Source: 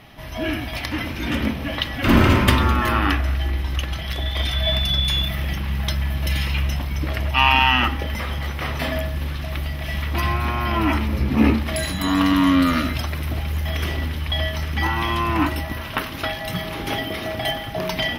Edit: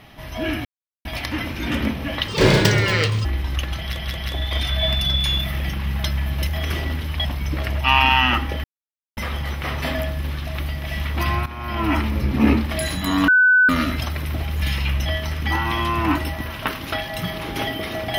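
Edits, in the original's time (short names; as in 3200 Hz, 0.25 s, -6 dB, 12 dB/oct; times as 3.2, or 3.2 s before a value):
0.65 insert silence 0.40 s
1.88–3.45 speed 162%
3.99 stutter 0.18 s, 3 plays
6.31–6.75 swap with 13.59–14.37
8.14 insert silence 0.53 s
10.43–10.91 fade in linear, from -14.5 dB
12.25–12.66 bleep 1500 Hz -10.5 dBFS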